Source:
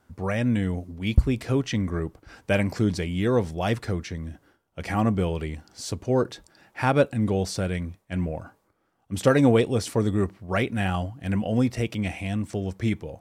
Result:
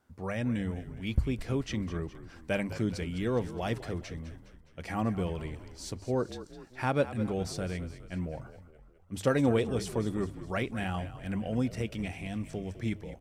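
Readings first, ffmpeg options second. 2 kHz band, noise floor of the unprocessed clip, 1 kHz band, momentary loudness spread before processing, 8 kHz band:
−7.0 dB, −69 dBFS, −7.5 dB, 13 LU, −7.0 dB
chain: -filter_complex "[0:a]bandreject=frequency=50:width_type=h:width=6,bandreject=frequency=100:width_type=h:width=6,asplit=6[link_01][link_02][link_03][link_04][link_05][link_06];[link_02]adelay=207,afreqshift=-44,volume=-13.5dB[link_07];[link_03]adelay=414,afreqshift=-88,volume=-18.9dB[link_08];[link_04]adelay=621,afreqshift=-132,volume=-24.2dB[link_09];[link_05]adelay=828,afreqshift=-176,volume=-29.6dB[link_10];[link_06]adelay=1035,afreqshift=-220,volume=-34.9dB[link_11];[link_01][link_07][link_08][link_09][link_10][link_11]amix=inputs=6:normalize=0,volume=-7.5dB"

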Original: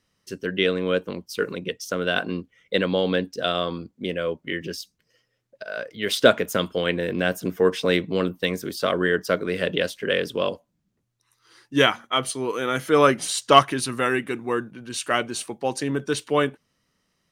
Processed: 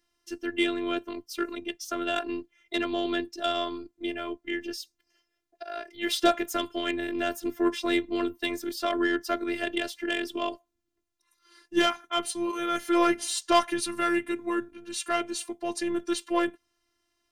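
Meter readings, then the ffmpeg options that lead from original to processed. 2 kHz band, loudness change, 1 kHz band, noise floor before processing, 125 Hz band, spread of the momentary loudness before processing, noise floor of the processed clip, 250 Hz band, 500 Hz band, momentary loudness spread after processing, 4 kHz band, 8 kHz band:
−6.0 dB, −5.5 dB, −4.5 dB, −74 dBFS, −20.5 dB, 13 LU, −79 dBFS, −1.5 dB, −7.5 dB, 11 LU, −5.5 dB, −3.5 dB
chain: -filter_complex "[0:a]acrossover=split=410[link_01][link_02];[link_02]asoftclip=type=tanh:threshold=-13dB[link_03];[link_01][link_03]amix=inputs=2:normalize=0,afftfilt=real='hypot(re,im)*cos(PI*b)':imag='0':win_size=512:overlap=0.75"

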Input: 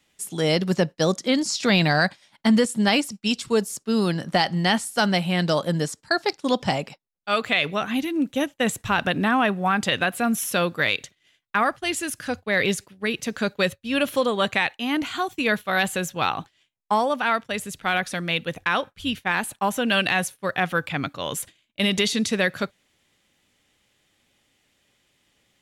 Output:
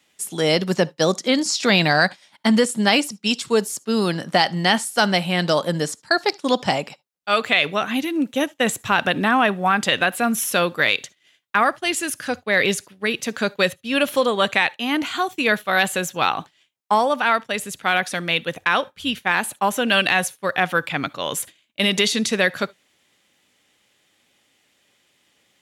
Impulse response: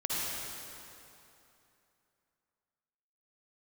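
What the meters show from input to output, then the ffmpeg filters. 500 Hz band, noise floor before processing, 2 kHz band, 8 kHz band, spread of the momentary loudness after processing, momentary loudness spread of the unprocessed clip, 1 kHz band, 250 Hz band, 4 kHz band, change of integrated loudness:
+3.0 dB, −70 dBFS, +4.0 dB, +4.0 dB, 7 LU, 7 LU, +3.5 dB, +1.0 dB, +4.0 dB, +3.0 dB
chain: -filter_complex "[0:a]highpass=frequency=240:poles=1,asplit=2[link_01][link_02];[1:a]atrim=start_sample=2205,atrim=end_sample=3528[link_03];[link_02][link_03]afir=irnorm=-1:irlink=0,volume=-23.5dB[link_04];[link_01][link_04]amix=inputs=2:normalize=0,volume=3.5dB"

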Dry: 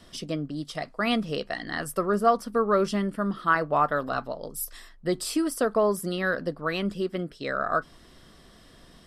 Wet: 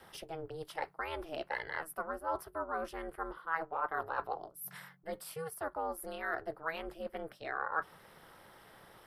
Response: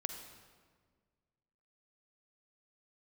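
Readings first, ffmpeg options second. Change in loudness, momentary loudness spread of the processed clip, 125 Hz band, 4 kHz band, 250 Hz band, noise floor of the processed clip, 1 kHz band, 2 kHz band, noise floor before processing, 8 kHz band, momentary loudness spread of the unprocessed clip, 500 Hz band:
−12.0 dB, 13 LU, −19.0 dB, −15.5 dB, −20.5 dB, −61 dBFS, −9.5 dB, −8.5 dB, −53 dBFS, −13.0 dB, 10 LU, −14.0 dB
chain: -filter_complex "[0:a]aexciter=amount=5.4:drive=6.7:freq=10000,areverse,acompressor=threshold=-32dB:ratio=12,areverse,aeval=exprs='val(0)*sin(2*PI*160*n/s)':channel_layout=same,acrossover=split=540 2200:gain=0.178 1 0.2[link_01][link_02][link_03];[link_01][link_02][link_03]amix=inputs=3:normalize=0,volume=5.5dB"

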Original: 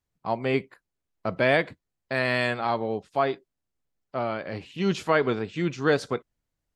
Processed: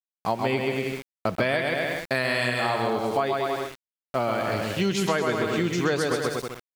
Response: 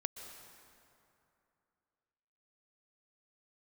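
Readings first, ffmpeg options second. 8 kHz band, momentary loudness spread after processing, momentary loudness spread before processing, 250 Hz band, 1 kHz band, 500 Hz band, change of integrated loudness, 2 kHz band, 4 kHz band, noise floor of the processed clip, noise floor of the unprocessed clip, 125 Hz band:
can't be measured, 7 LU, 11 LU, +2.0 dB, +2.0 dB, +1.0 dB, +1.0 dB, +1.5 dB, +4.5 dB, below −85 dBFS, −84 dBFS, +2.0 dB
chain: -af "aemphasis=mode=production:type=50fm,aecho=1:1:130|234|317.2|383.8|437:0.631|0.398|0.251|0.158|0.1,aeval=exprs='val(0)*gte(abs(val(0)),0.00841)':channel_layout=same,acompressor=threshold=-27dB:ratio=6,volume=6dB"

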